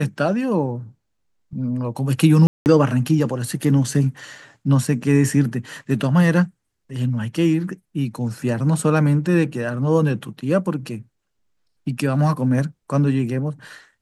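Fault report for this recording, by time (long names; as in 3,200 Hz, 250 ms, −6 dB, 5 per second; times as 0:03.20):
0:02.47–0:02.66: drop-out 189 ms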